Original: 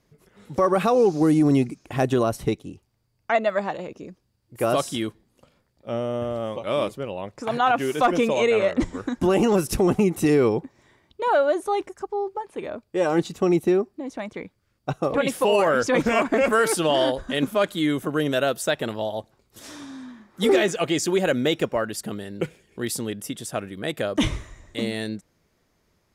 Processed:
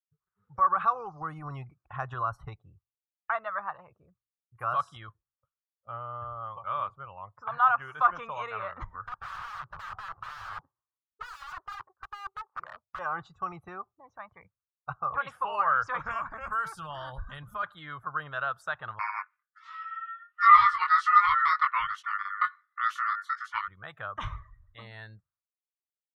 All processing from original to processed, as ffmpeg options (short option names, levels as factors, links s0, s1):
-filter_complex "[0:a]asettb=1/sr,asplit=3[s0][s1][s2];[s0]atrim=end=9.064[s3];[s1]atrim=start=9.06:end=12.99,asetpts=PTS-STARTPTS,afade=t=in:d=0.004:c=qsin,afade=t=out:st=3.926:d=0.004:c=qsin,lowpass=1100,lowshelf=f=240:g=-5,aeval=exprs='(mod(23.7*val(0)+1,2)-1)/23.7':c=same[s4];[s2]atrim=start=12.986[s5];[s3][s4]acrossfade=d=0.004:c1=hsin:c2=qsin[s6];[s6][s5]acrossfade=d=0.004:c1=qsin:c2=hsin,asettb=1/sr,asplit=3[s7][s8][s9];[s7]atrim=end=16.114[s10];[s8]atrim=start=16.11:end=17.63,asetpts=PTS-STARTPTS,afade=t=in:d=0.004:c=qsin,afade=t=out:st=1.516:d=0.004:c=qsin,bass=f=250:g=13,treble=f=4000:g=11,acompressor=threshold=0.1:ratio=12:attack=3.2:release=140:knee=1:detection=peak[s11];[s9]atrim=start=17.626[s12];[s10][s11]acrossfade=d=0.004:c1=hsin:c2=qsin[s13];[s13][s12]acrossfade=d=0.004:c1=qsin:c2=hsin,asettb=1/sr,asplit=3[s14][s15][s16];[s14]atrim=end=18.994[s17];[s15]atrim=start=18.99:end=23.68,asetpts=PTS-STARTPTS,afade=t=in:d=0.004:c=qsin,afade=t=out:st=4.686:d=0.004:c=qsin,aeval=exprs='val(0)*sin(2*PI*1600*n/s)':c=same,equalizer=f=3300:t=o:w=2.7:g=12.5,flanger=delay=19:depth=3.2:speed=1.3[s18];[s16]atrim=start=23.676[s19];[s17][s18]acrossfade=d=0.004:c1=hsin:c2=qsin[s20];[s20][s19]acrossfade=d=0.004:c1=qsin:c2=hsin,agate=range=0.0224:threshold=0.00251:ratio=3:detection=peak,afftdn=nr=22:nf=-43,firequalizer=gain_entry='entry(110,0);entry(250,-26);entry(760,-2);entry(1200,14);entry(2100,-6);entry(8200,-20)':delay=0.05:min_phase=1,volume=0.355"